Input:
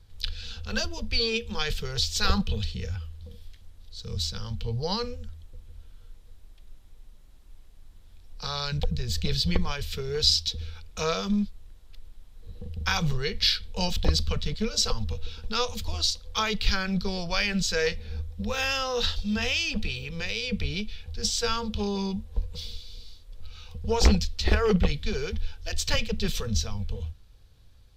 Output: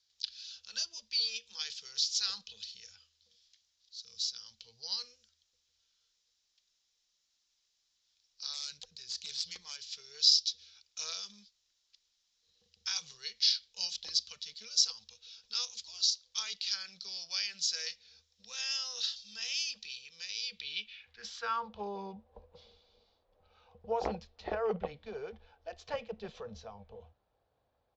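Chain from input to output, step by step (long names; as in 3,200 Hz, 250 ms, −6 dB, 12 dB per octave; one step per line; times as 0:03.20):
0:08.53–0:09.82: phase distortion by the signal itself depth 0.16 ms
downsampling to 16,000 Hz
band-pass filter sweep 5,500 Hz → 700 Hz, 0:20.38–0:21.87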